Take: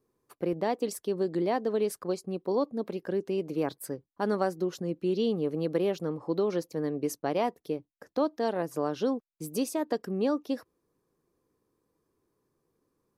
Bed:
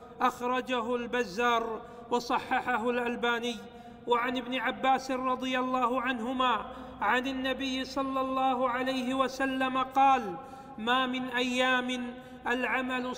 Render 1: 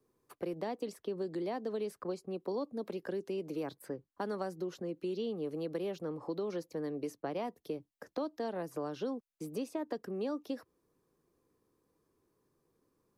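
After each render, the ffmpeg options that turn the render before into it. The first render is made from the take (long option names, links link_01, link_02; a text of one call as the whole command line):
ffmpeg -i in.wav -filter_complex "[0:a]acrossover=split=230|3400[link_01][link_02][link_03];[link_01]acompressor=threshold=-46dB:ratio=4[link_04];[link_02]acompressor=threshold=-36dB:ratio=4[link_05];[link_03]acompressor=threshold=-59dB:ratio=4[link_06];[link_04][link_05][link_06]amix=inputs=3:normalize=0,acrossover=split=220|6100[link_07][link_08][link_09];[link_07]alimiter=level_in=21.5dB:limit=-24dB:level=0:latency=1,volume=-21.5dB[link_10];[link_10][link_08][link_09]amix=inputs=3:normalize=0" out.wav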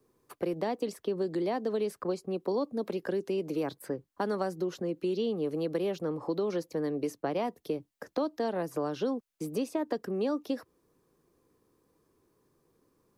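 ffmpeg -i in.wav -af "volume=6dB" out.wav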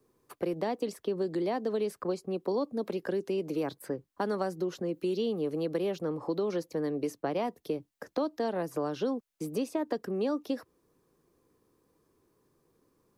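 ffmpeg -i in.wav -filter_complex "[0:a]asettb=1/sr,asplit=3[link_01][link_02][link_03];[link_01]atrim=end=4.934[link_04];[link_02]atrim=start=4.93:end=5.42,asetpts=PTS-STARTPTS,afade=type=in:duration=0.004:curve=qsin,afade=type=out:start_time=0.486:duration=0.004:curve=qsin,highshelf=frequency=9100:gain=9[link_05];[link_03]atrim=start=5.416[link_06];[link_04][link_05]acrossfade=duration=0.004:curve1=hsin:curve2=qsin[link_07];[link_07][link_06]acrossfade=duration=0.004:curve1=qsin:curve2=hsin" out.wav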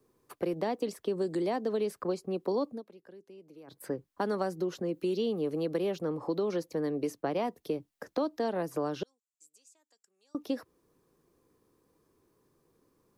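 ffmpeg -i in.wav -filter_complex "[0:a]asettb=1/sr,asplit=3[link_01][link_02][link_03];[link_01]atrim=end=1.054[link_04];[link_02]atrim=start=1.05:end=1.56,asetpts=PTS-STARTPTS,afade=type=in:duration=0.004:curve=qsin,afade=type=out:start_time=0.506:duration=0.004:curve=qsin,equalizer=frequency=8100:width_type=o:width=0.39:gain=12[link_05];[link_03]atrim=start=1.556[link_06];[link_04][link_05]acrossfade=duration=0.004:curve1=hsin:curve2=qsin[link_07];[link_07][link_06]acrossfade=duration=0.004:curve1=qsin:curve2=hsin,asettb=1/sr,asplit=3[link_08][link_09][link_10];[link_08]atrim=end=9.034[link_11];[link_09]atrim=start=9.03:end=10.35,asetpts=PTS-STARTPTS,afade=type=in:duration=0.004:curve=qsin,afade=type=out:start_time=1.316:duration=0.004:curve=qsin,bandpass=frequency=7400:width_type=q:width=8[link_12];[link_10]atrim=start=10.346[link_13];[link_11][link_12]acrossfade=duration=0.004:curve1=hsin:curve2=qsin[link_14];[link_14][link_13]acrossfade=duration=0.004:curve1=qsin:curve2=hsin,asplit=3[link_15][link_16][link_17];[link_15]atrim=end=2.83,asetpts=PTS-STARTPTS,afade=type=out:start_time=2.69:duration=0.14:silence=0.1[link_18];[link_16]atrim=start=2.83:end=3.67,asetpts=PTS-STARTPTS,volume=-20dB[link_19];[link_17]atrim=start=3.67,asetpts=PTS-STARTPTS,afade=type=in:duration=0.14:silence=0.1[link_20];[link_18][link_19][link_20]concat=n=3:v=0:a=1" out.wav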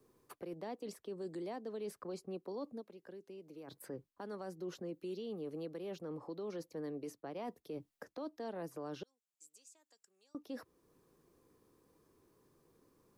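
ffmpeg -i in.wav -af "areverse,acompressor=threshold=-37dB:ratio=6,areverse,alimiter=level_in=11dB:limit=-24dB:level=0:latency=1:release=437,volume=-11dB" out.wav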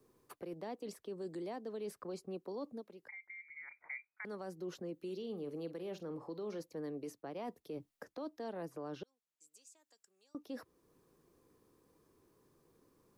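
ffmpeg -i in.wav -filter_complex "[0:a]asettb=1/sr,asplit=3[link_01][link_02][link_03];[link_01]atrim=end=3.084[link_04];[link_02]atrim=start=3.08:end=4.25,asetpts=PTS-STARTPTS,afade=type=in:duration=0.004:curve=qsin,afade=type=out:start_time=1.166:duration=0.004:curve=qsin,lowpass=frequency=2100:width_type=q:width=0.5098,lowpass=frequency=2100:width_type=q:width=0.6013,lowpass=frequency=2100:width_type=q:width=0.9,lowpass=frequency=2100:width_type=q:width=2.563,afreqshift=-2500[link_05];[link_03]atrim=start=4.246[link_06];[link_04][link_05]acrossfade=duration=0.004:curve1=hsin:curve2=qsin[link_07];[link_07][link_06]acrossfade=duration=0.004:curve1=qsin:curve2=hsin,asettb=1/sr,asplit=3[link_08][link_09][link_10];[link_08]atrim=end=4.954[link_11];[link_09]atrim=start=4.95:end=6.61,asetpts=PTS-STARTPTS,afade=type=in:duration=0.004:curve=qsin,afade=type=out:start_time=1.656:duration=0.004:curve=qsin,asplit=2[link_12][link_13];[link_13]adelay=48,volume=-13.5dB[link_14];[link_12][link_14]amix=inputs=2:normalize=0,atrim=end_sample=73206[link_15];[link_10]atrim=start=6.606[link_16];[link_11][link_15]acrossfade=duration=0.004:curve1=hsin:curve2=qsin[link_17];[link_17][link_16]acrossfade=duration=0.004:curve1=qsin:curve2=hsin,asettb=1/sr,asplit=3[link_18][link_19][link_20];[link_18]atrim=end=8.654[link_21];[link_19]atrim=start=8.65:end=9.52,asetpts=PTS-STARTPTS,afade=type=in:duration=0.004:curve=qsin,afade=type=out:start_time=0.866:duration=0.004:curve=qsin,highshelf=frequency=4600:gain=-6.5[link_22];[link_20]atrim=start=9.516[link_23];[link_21][link_22]acrossfade=duration=0.004:curve1=hsin:curve2=qsin[link_24];[link_24][link_23]acrossfade=duration=0.004:curve1=qsin:curve2=hsin" out.wav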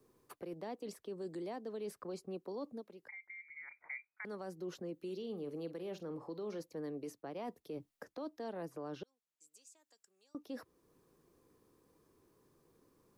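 ffmpeg -i in.wav -af anull out.wav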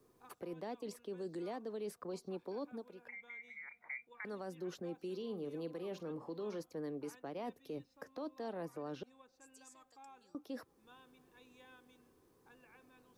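ffmpeg -i in.wav -i bed.wav -filter_complex "[1:a]volume=-34.5dB[link_01];[0:a][link_01]amix=inputs=2:normalize=0" out.wav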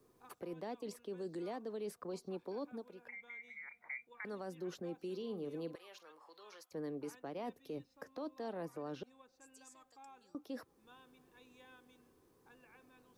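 ffmpeg -i in.wav -filter_complex "[0:a]asettb=1/sr,asplit=3[link_01][link_02][link_03];[link_01]atrim=end=5.754[link_04];[link_02]atrim=start=5.75:end=6.72,asetpts=PTS-STARTPTS,afade=type=in:duration=0.004:curve=qsin,afade=type=out:start_time=0.966:duration=0.004:curve=qsin,highpass=1200[link_05];[link_03]atrim=start=6.716[link_06];[link_04][link_05]acrossfade=duration=0.004:curve1=hsin:curve2=qsin[link_07];[link_07][link_06]acrossfade=duration=0.004:curve1=qsin:curve2=hsin" out.wav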